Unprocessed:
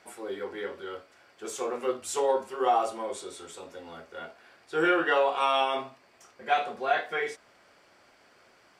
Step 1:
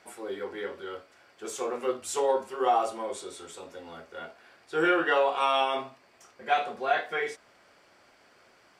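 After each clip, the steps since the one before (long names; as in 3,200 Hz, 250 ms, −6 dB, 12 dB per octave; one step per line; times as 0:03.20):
no processing that can be heard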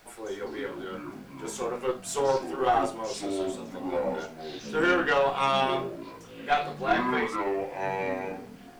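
delay with pitch and tempo change per echo 158 ms, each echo −6 semitones, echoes 3, each echo −6 dB
harmonic generator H 4 −19 dB, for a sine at −12 dBFS
background noise pink −60 dBFS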